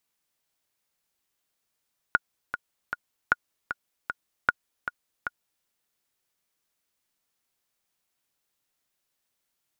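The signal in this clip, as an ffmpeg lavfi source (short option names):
-f lavfi -i "aevalsrc='pow(10,(-6-10*gte(mod(t,3*60/154),60/154))/20)*sin(2*PI*1440*mod(t,60/154))*exp(-6.91*mod(t,60/154)/0.03)':d=3.5:s=44100"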